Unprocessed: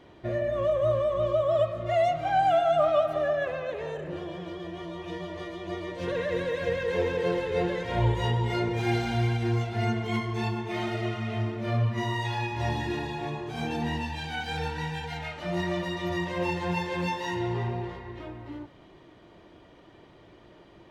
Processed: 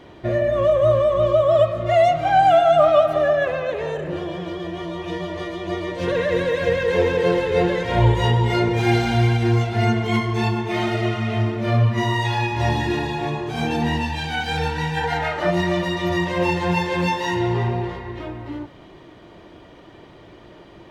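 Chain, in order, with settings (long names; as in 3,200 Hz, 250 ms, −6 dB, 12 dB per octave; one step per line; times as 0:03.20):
gain on a spectral selection 0:14.97–0:15.50, 300–2,100 Hz +7 dB
level +8.5 dB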